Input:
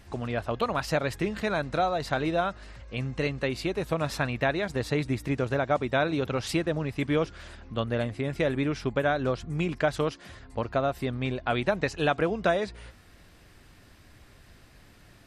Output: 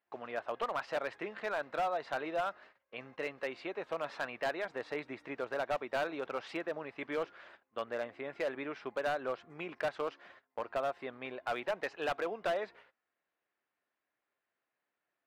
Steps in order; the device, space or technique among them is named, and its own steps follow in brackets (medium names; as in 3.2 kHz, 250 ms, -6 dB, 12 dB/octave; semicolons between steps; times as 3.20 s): walkie-talkie (band-pass 530–2200 Hz; hard clipper -24 dBFS, distortion -12 dB; gate -51 dBFS, range -22 dB); trim -4 dB